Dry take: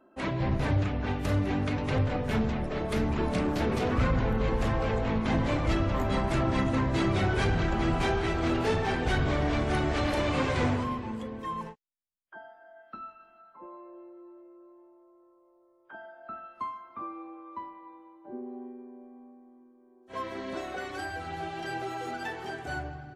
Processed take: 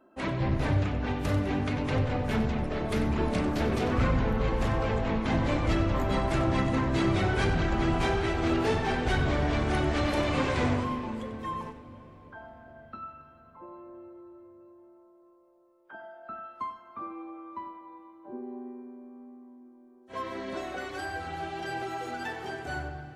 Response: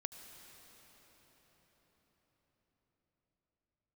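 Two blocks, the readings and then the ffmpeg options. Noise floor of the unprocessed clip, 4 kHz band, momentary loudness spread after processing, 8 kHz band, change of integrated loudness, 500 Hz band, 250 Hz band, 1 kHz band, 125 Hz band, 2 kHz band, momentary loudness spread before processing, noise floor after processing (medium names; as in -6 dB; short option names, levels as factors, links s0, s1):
-62 dBFS, +0.5 dB, 20 LU, +0.5 dB, +0.5 dB, +0.5 dB, +0.5 dB, +0.5 dB, 0.0 dB, +0.5 dB, 17 LU, -57 dBFS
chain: -filter_complex "[0:a]asplit=2[s0][s1];[1:a]atrim=start_sample=2205,adelay=94[s2];[s1][s2]afir=irnorm=-1:irlink=0,volume=0.398[s3];[s0][s3]amix=inputs=2:normalize=0"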